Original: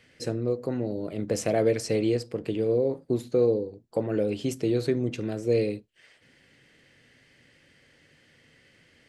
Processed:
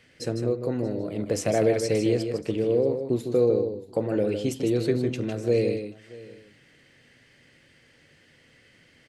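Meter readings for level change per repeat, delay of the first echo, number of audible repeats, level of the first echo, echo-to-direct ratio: repeats not evenly spaced, 155 ms, 3, −7.0 dB, −7.0 dB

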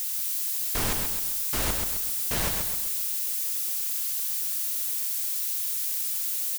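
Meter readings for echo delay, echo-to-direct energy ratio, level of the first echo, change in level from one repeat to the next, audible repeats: 131 ms, −4.0 dB, −5.0 dB, −7.0 dB, 4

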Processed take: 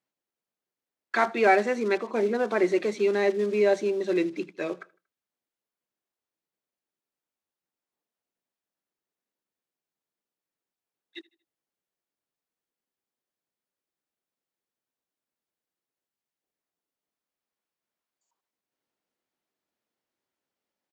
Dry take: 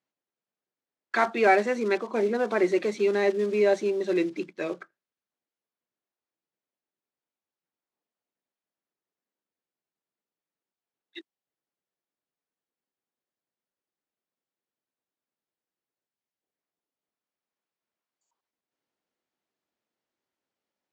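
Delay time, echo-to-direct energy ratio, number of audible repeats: 78 ms, −23.5 dB, 2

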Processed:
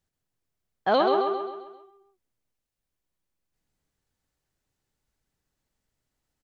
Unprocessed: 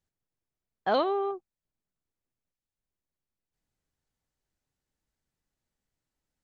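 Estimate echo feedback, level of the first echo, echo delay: 47%, −5.0 dB, 132 ms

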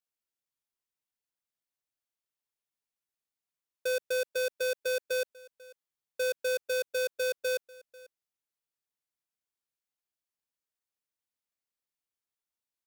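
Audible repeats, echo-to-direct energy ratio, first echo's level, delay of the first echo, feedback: 1, −22.0 dB, −22.0 dB, 493 ms, repeats not evenly spaced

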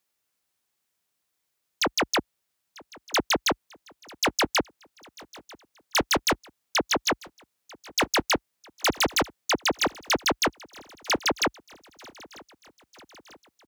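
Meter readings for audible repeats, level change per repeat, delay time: 3, −4.5 dB, 944 ms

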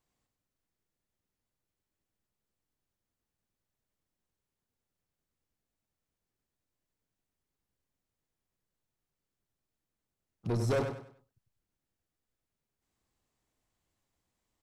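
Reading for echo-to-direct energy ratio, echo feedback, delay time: −6.5 dB, 32%, 98 ms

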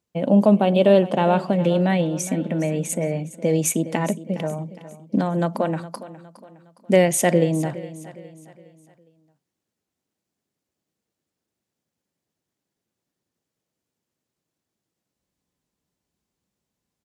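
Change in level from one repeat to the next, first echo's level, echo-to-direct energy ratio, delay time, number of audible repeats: −7.5 dB, −16.0 dB, −15.0 dB, 412 ms, 3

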